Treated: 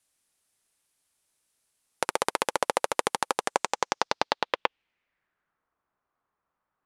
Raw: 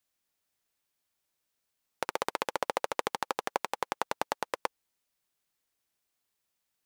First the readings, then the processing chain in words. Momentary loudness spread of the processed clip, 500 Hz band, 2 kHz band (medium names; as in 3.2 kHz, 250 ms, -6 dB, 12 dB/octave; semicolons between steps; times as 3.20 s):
3 LU, +5.0 dB, +5.5 dB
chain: low-pass sweep 10 kHz -> 1.2 kHz, 3.35–5.70 s; trim +5 dB